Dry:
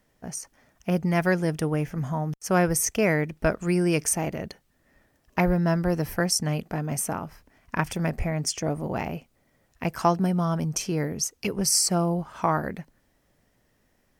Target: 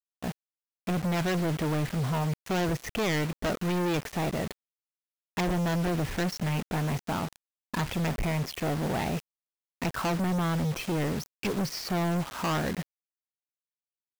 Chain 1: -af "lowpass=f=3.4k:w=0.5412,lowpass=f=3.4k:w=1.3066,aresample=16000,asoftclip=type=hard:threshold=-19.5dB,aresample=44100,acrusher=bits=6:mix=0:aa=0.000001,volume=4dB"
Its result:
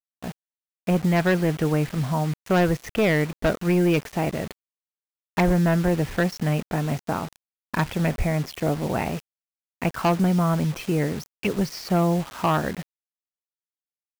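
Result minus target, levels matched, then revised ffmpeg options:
hard clip: distortion -8 dB
-af "lowpass=f=3.4k:w=0.5412,lowpass=f=3.4k:w=1.3066,aresample=16000,asoftclip=type=hard:threshold=-28.5dB,aresample=44100,acrusher=bits=6:mix=0:aa=0.000001,volume=4dB"

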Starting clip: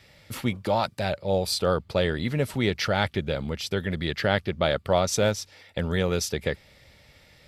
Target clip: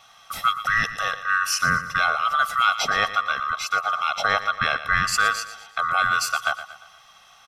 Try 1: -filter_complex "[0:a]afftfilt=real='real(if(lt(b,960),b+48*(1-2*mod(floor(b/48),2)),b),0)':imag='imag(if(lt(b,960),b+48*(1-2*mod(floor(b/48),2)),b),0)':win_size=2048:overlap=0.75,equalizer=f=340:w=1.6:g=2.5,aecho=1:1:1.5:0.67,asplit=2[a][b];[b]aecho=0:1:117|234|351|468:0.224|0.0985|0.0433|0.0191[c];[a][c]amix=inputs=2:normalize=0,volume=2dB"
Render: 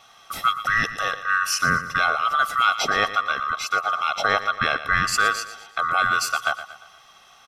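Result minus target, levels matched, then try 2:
250 Hz band +3.5 dB
-filter_complex "[0:a]afftfilt=real='real(if(lt(b,960),b+48*(1-2*mod(floor(b/48),2)),b),0)':imag='imag(if(lt(b,960),b+48*(1-2*mod(floor(b/48),2)),b),0)':win_size=2048:overlap=0.75,equalizer=f=340:w=1.6:g=-7.5,aecho=1:1:1.5:0.67,asplit=2[a][b];[b]aecho=0:1:117|234|351|468:0.224|0.0985|0.0433|0.0191[c];[a][c]amix=inputs=2:normalize=0,volume=2dB"

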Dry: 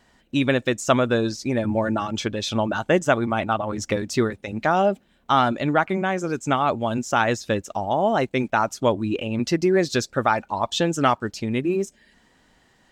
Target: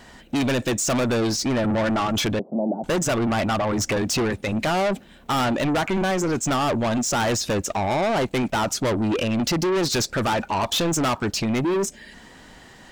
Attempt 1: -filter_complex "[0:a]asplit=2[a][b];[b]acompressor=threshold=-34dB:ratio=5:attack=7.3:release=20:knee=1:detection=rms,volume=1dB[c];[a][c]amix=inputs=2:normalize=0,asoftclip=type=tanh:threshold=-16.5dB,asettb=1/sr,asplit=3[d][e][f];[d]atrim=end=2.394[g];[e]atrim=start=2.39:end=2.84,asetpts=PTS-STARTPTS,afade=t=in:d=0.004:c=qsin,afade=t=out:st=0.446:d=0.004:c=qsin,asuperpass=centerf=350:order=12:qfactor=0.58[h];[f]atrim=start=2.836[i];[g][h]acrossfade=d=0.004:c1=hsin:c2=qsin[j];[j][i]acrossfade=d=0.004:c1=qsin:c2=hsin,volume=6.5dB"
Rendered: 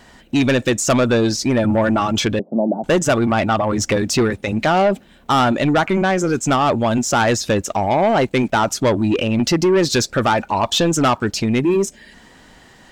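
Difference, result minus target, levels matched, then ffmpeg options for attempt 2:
soft clip: distortion -6 dB
-filter_complex "[0:a]asplit=2[a][b];[b]acompressor=threshold=-34dB:ratio=5:attack=7.3:release=20:knee=1:detection=rms,volume=1dB[c];[a][c]amix=inputs=2:normalize=0,asoftclip=type=tanh:threshold=-26dB,asettb=1/sr,asplit=3[d][e][f];[d]atrim=end=2.394[g];[e]atrim=start=2.39:end=2.84,asetpts=PTS-STARTPTS,afade=t=in:d=0.004:c=qsin,afade=t=out:st=0.446:d=0.004:c=qsin,asuperpass=centerf=350:order=12:qfactor=0.58[h];[f]atrim=start=2.836[i];[g][h]acrossfade=d=0.004:c1=hsin:c2=qsin[j];[j][i]acrossfade=d=0.004:c1=qsin:c2=hsin,volume=6.5dB"

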